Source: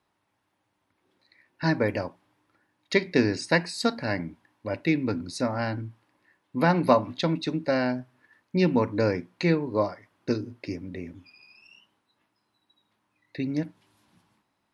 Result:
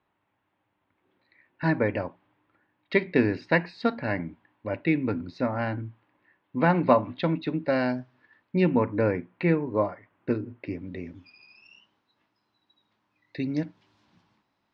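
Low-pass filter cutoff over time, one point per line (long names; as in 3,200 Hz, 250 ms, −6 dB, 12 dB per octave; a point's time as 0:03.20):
low-pass filter 24 dB per octave
0:07.63 3,200 Hz
0:07.99 5,800 Hz
0:08.80 2,700 Hz
0:10.60 2,700 Hz
0:11.12 5,800 Hz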